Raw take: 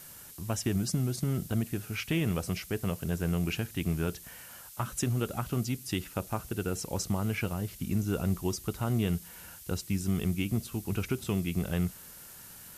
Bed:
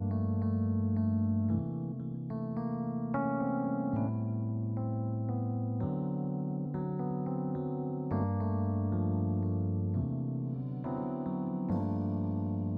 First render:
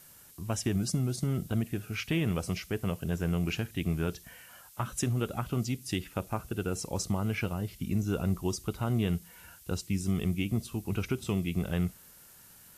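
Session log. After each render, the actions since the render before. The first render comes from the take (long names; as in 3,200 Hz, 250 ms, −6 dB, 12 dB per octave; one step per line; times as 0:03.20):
noise reduction from a noise print 6 dB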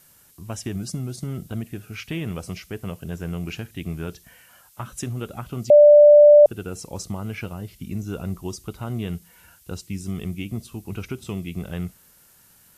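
0:05.70–0:06.46: beep over 590 Hz −6.5 dBFS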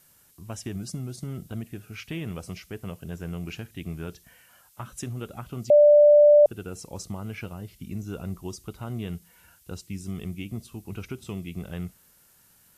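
level −4.5 dB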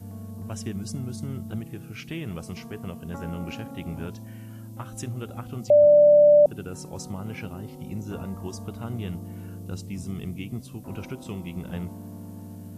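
mix in bed −7 dB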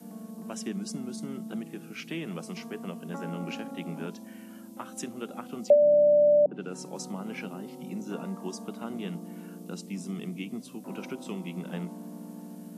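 Butterworth high-pass 170 Hz 48 dB per octave
treble cut that deepens with the level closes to 470 Hz, closed at −12.5 dBFS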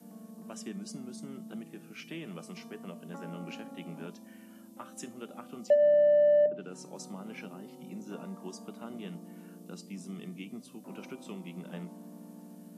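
tuned comb filter 600 Hz, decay 0.34 s, mix 70%
in parallel at −5 dB: soft clipping −26 dBFS, distortion −13 dB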